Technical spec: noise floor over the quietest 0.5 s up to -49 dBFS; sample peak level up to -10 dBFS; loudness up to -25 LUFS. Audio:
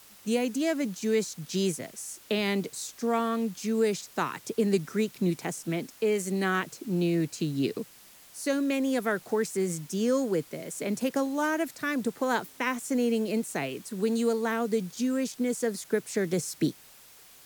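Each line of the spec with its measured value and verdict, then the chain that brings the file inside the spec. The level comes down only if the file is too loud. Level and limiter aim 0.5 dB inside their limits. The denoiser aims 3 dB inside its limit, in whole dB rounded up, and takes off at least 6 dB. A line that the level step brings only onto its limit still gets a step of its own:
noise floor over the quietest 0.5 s -53 dBFS: pass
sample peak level -13.0 dBFS: pass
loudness -29.5 LUFS: pass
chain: none needed

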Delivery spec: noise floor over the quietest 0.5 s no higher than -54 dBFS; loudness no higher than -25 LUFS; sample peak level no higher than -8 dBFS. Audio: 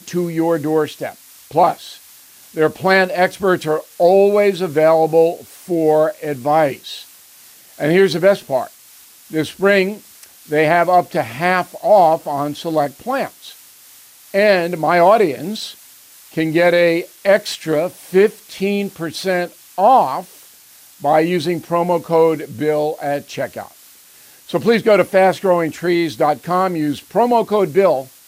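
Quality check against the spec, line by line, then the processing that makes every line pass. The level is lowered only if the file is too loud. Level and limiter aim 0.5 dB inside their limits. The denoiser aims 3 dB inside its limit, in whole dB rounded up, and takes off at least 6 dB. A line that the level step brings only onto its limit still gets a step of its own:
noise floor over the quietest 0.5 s -45 dBFS: fail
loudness -16.5 LUFS: fail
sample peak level -2.5 dBFS: fail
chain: noise reduction 6 dB, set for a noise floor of -45 dBFS; trim -9 dB

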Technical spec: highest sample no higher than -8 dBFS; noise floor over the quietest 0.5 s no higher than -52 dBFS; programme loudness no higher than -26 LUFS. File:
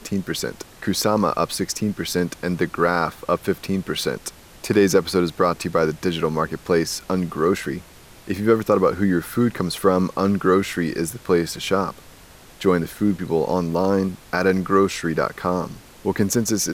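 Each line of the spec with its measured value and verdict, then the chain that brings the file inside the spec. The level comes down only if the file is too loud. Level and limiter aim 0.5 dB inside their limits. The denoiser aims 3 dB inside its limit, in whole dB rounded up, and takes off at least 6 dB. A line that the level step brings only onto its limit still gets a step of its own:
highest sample -5.0 dBFS: fail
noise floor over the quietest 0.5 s -46 dBFS: fail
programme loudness -21.5 LUFS: fail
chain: noise reduction 6 dB, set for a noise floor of -46 dBFS; trim -5 dB

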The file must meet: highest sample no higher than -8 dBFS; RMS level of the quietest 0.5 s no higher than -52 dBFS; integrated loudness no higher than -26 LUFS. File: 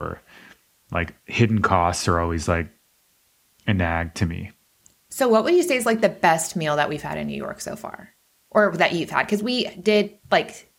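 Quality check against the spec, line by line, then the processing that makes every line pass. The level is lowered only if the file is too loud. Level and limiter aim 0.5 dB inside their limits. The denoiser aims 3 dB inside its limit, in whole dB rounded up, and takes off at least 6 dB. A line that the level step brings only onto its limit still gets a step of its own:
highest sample -3.5 dBFS: fail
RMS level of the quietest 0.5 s -63 dBFS: pass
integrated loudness -22.0 LUFS: fail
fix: trim -4.5 dB; peak limiter -8.5 dBFS

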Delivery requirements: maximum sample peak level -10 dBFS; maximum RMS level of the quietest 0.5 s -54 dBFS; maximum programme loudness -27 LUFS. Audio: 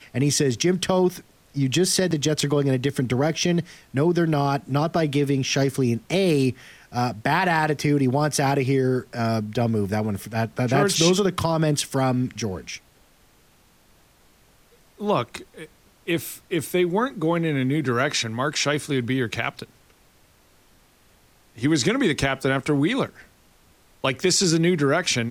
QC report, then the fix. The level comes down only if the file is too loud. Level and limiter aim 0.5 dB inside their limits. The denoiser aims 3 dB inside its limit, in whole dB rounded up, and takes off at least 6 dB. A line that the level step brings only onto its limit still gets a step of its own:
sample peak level -5.5 dBFS: fail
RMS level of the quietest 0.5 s -57 dBFS: pass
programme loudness -22.5 LUFS: fail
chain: trim -5 dB

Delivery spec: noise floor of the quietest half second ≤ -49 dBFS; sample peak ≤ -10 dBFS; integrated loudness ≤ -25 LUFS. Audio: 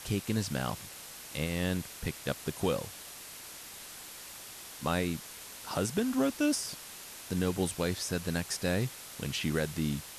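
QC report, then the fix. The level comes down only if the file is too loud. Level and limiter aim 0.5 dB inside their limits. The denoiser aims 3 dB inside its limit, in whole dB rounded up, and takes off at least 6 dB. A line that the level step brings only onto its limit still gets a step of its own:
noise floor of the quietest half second -47 dBFS: fail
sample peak -17.5 dBFS: pass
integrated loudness -34.0 LUFS: pass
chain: noise reduction 6 dB, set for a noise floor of -47 dBFS

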